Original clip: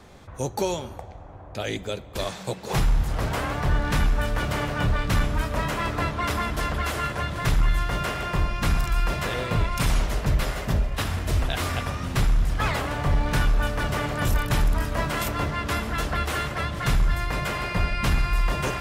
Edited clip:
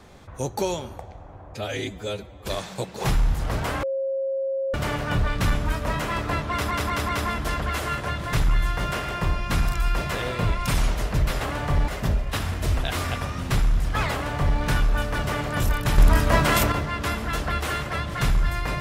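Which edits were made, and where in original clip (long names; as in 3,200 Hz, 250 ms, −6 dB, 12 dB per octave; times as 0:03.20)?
0:01.54–0:02.16: time-stretch 1.5×
0:03.52–0:04.43: beep over 539 Hz −23 dBFS
0:06.21: stutter 0.19 s, 4 plays
0:12.77–0:13.24: duplicate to 0:10.53
0:14.63–0:15.37: clip gain +7 dB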